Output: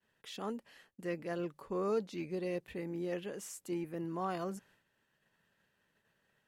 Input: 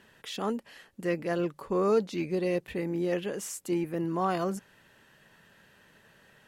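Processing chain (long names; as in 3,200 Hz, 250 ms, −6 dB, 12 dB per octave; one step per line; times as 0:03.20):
downward expander −52 dBFS
level −8.5 dB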